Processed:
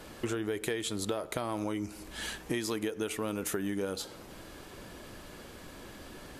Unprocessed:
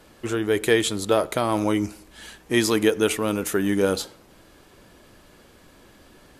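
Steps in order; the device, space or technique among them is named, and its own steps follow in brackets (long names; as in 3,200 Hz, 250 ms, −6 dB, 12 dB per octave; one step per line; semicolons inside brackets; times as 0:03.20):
serial compression, leveller first (downward compressor 1.5 to 1, threshold −30 dBFS, peak gain reduction 6 dB; downward compressor 6 to 1, threshold −35 dBFS, peak gain reduction 14.5 dB)
level +4 dB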